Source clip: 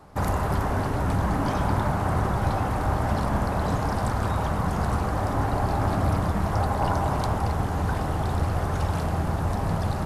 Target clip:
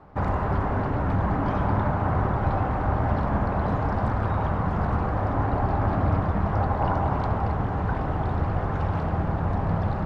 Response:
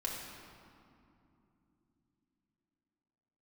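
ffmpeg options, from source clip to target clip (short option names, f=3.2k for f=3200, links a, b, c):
-filter_complex "[0:a]lowpass=2.2k,asplit=2[a][b];[1:a]atrim=start_sample=2205,adelay=68[c];[b][c]afir=irnorm=-1:irlink=0,volume=-15dB[d];[a][d]amix=inputs=2:normalize=0"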